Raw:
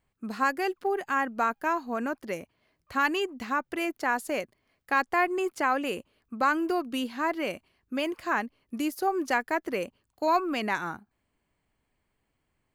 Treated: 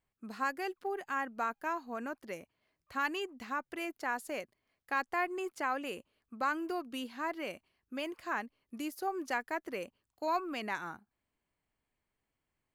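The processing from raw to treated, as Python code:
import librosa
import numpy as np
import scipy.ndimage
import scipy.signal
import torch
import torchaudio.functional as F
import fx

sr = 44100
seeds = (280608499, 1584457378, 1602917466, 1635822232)

y = fx.low_shelf(x, sr, hz=440.0, db=-3.0)
y = y * 10.0 ** (-7.5 / 20.0)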